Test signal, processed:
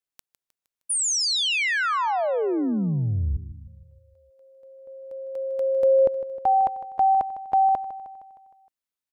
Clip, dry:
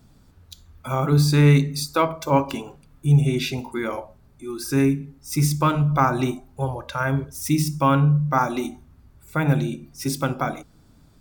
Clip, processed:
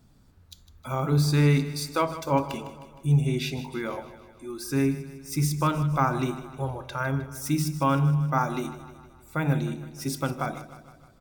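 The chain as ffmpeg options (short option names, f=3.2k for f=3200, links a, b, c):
-af "aecho=1:1:155|310|465|620|775|930:0.2|0.112|0.0626|0.035|0.0196|0.011,volume=-5dB"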